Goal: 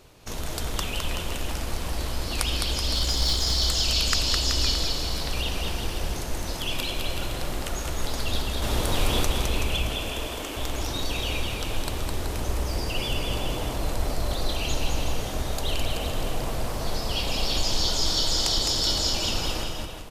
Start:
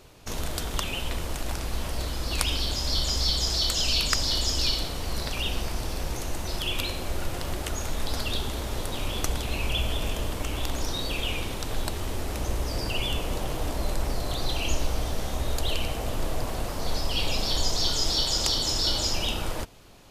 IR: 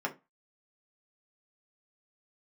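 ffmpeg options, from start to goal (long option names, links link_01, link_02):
-filter_complex "[0:a]asettb=1/sr,asplit=3[link_01][link_02][link_03];[link_01]atrim=end=2.954[link_04];[link_02]atrim=start=2.95:end=3.44,asetpts=PTS-STARTPTS,afade=type=in:duration=0.004:curve=qsin,afade=type=out:start_time=0.486:duration=0.004:curve=qsin,aeval=exprs='0.282*(cos(1*acos(clip(val(0)/0.282,-1,1)))-cos(1*PI/2))+0.0178*(cos(8*acos(clip(val(0)/0.282,-1,1)))-cos(8*PI/2))':channel_layout=same[link_05];[link_03]atrim=start=3.436[link_06];[link_04][link_05]acrossfade=duration=0.004:curve1=hsin:curve2=qsin[link_07];[link_07][link_06]acrossfade=duration=0.004:curve1=qsin:curve2=hsin,asettb=1/sr,asplit=3[link_08][link_09][link_10];[link_08]atrim=end=8.624[link_11];[link_09]atrim=start=8.62:end=9.24,asetpts=PTS-STARTPTS,afade=type=in:duration=0.004:curve=qsin,afade=type=out:start_time=0.616:duration=0.004:curve=qsin,acontrast=60[link_12];[link_10]atrim=start=9.236[link_13];[link_11][link_12]acrossfade=duration=0.004:curve1=hsin:curve2=qsin[link_14];[link_14][link_13]acrossfade=duration=0.004:curve1=qsin:curve2=hsin,asettb=1/sr,asplit=3[link_15][link_16][link_17];[link_15]atrim=end=9.894[link_18];[link_16]atrim=start=9.89:end=10.56,asetpts=PTS-STARTPTS,afade=type=in:duration=0.004:curve=qsin,afade=type=out:start_time=0.666:duration=0.004:curve=qsin,highpass=frequency=250:width=0.5412,highpass=frequency=250:width=1.3066[link_19];[link_17]atrim=start=10.556[link_20];[link_18][link_19]acrossfade=duration=0.004:curve1=hsin:curve2=qsin[link_21];[link_21][link_20]acrossfade=duration=0.004:curve1=qsin:curve2=hsin,asplit=2[link_22][link_23];[link_23]aecho=0:1:210|378|512.4|619.9|705.9:0.631|0.398|0.251|0.158|0.1[link_24];[link_22][link_24]amix=inputs=2:normalize=0,volume=-1dB"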